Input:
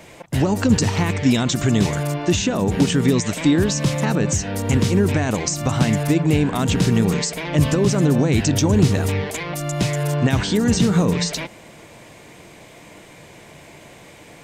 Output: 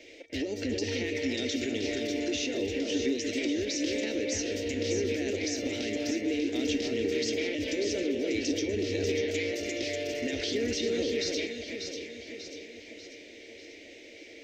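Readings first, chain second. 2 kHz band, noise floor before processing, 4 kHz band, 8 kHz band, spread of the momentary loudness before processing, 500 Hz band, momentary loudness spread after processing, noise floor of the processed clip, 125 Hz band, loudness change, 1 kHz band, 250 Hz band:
−7.5 dB, −44 dBFS, −6.5 dB, −11.5 dB, 6 LU, −6.5 dB, 16 LU, −49 dBFS, −25.0 dB, −11.5 dB, −22.0 dB, −12.5 dB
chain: drawn EQ curve 100 Hz 0 dB, 150 Hz −24 dB, 280 Hz +14 dB, 570 Hz +10 dB, 1,100 Hz −19 dB, 2,000 Hz +13 dB, 5,800 Hz +14 dB, 10,000 Hz −15 dB, 15,000 Hz −1 dB
downward compressor, threshold −9 dBFS, peak gain reduction 10 dB
brickwall limiter −5.5 dBFS, peak gain reduction 7 dB
tuned comb filter 460 Hz, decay 0.38 s, mix 70%
delay that swaps between a low-pass and a high-pass 296 ms, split 2,500 Hz, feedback 71%, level −3 dB
level −8 dB

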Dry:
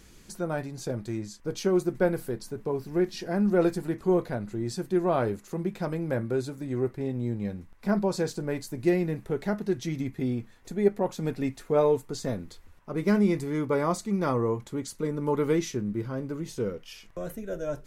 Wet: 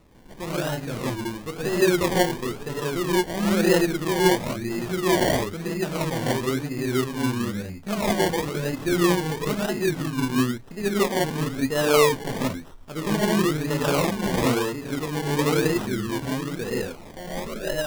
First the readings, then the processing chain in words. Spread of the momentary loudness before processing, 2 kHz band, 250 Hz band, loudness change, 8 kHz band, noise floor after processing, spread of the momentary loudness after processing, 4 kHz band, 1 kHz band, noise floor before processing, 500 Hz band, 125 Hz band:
10 LU, +11.5 dB, +3.5 dB, +4.5 dB, +10.5 dB, −42 dBFS, 10 LU, +14.0 dB, +7.5 dB, −53 dBFS, +3.5 dB, +4.0 dB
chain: reverb whose tail is shaped and stops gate 200 ms rising, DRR −7 dB
sample-and-hold swept by an LFO 27×, swing 60% 1 Hz
level −3 dB

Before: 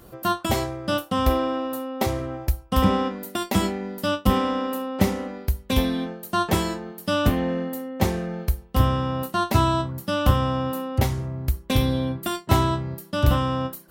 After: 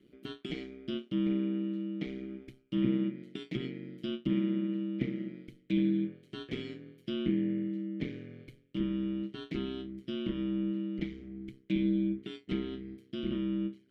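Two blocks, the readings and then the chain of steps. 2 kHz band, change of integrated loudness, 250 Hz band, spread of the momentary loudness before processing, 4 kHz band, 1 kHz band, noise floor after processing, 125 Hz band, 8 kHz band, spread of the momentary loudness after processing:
−16.5 dB, −10.5 dB, −5.5 dB, 8 LU, −15.0 dB, −32.0 dB, −65 dBFS, −15.5 dB, below −30 dB, 14 LU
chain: formant filter i
treble cut that deepens with the level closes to 2,700 Hz, closed at −28.5 dBFS
ring modulation 64 Hz
level +2 dB

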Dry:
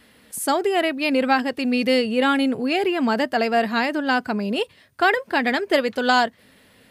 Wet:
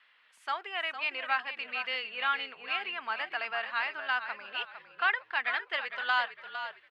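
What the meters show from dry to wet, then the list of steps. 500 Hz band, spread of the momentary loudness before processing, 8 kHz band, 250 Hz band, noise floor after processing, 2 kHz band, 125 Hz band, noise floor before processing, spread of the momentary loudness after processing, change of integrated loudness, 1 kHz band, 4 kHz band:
−22.5 dB, 6 LU, below −30 dB, −37.0 dB, −64 dBFS, −6.0 dB, can't be measured, −55 dBFS, 8 LU, −11.0 dB, −11.0 dB, −8.5 dB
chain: Chebyshev band-pass filter 1,100–3,000 Hz, order 2
echo with shifted repeats 456 ms, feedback 31%, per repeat −49 Hz, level −10 dB
level −6 dB

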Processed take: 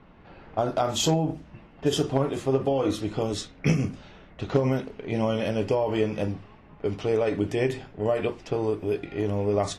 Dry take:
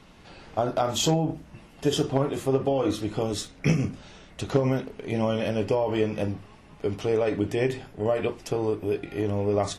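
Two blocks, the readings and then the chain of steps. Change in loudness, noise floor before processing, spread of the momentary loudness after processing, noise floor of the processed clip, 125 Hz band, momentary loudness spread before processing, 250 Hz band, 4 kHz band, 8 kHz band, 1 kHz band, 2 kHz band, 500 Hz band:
0.0 dB, −51 dBFS, 7 LU, −51 dBFS, 0.0 dB, 8 LU, 0.0 dB, 0.0 dB, −0.5 dB, 0.0 dB, 0.0 dB, 0.0 dB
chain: low-pass that shuts in the quiet parts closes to 1,700 Hz, open at −21.5 dBFS

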